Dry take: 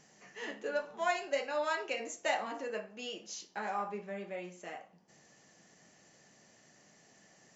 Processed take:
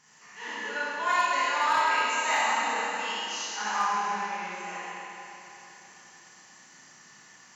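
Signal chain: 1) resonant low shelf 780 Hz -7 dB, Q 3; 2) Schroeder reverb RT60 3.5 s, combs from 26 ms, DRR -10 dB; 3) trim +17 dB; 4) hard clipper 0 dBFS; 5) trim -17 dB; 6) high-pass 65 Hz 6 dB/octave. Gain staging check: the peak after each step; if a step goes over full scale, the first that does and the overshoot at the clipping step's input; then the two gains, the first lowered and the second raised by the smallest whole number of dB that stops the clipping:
-18.5 dBFS, -12.0 dBFS, +5.0 dBFS, 0.0 dBFS, -17.0 dBFS, -16.5 dBFS; step 3, 5.0 dB; step 3 +12 dB, step 5 -12 dB

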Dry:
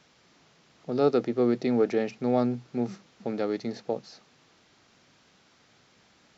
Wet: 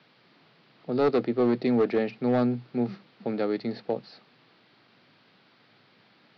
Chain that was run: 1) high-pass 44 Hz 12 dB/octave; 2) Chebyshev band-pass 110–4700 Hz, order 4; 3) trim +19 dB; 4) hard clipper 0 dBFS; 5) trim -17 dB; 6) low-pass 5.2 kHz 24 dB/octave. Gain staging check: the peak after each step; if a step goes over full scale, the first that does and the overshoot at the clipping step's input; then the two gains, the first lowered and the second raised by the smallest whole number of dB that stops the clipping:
-10.5 dBFS, -12.0 dBFS, +7.0 dBFS, 0.0 dBFS, -17.0 dBFS, -16.5 dBFS; step 3, 7.0 dB; step 3 +12 dB, step 5 -10 dB

